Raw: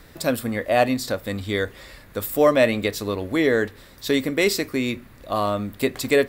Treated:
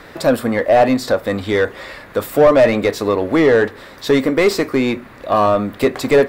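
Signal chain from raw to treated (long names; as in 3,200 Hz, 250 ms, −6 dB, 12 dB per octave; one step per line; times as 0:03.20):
mid-hump overdrive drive 20 dB, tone 1,200 Hz, clips at −4.5 dBFS
dynamic equaliser 2,700 Hz, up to −4 dB, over −34 dBFS, Q 0.89
level +3.5 dB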